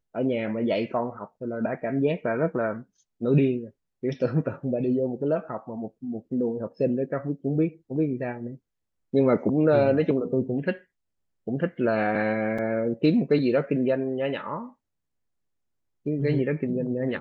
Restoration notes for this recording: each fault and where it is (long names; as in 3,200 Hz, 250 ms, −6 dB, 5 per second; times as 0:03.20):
0:12.58: drop-out 4.9 ms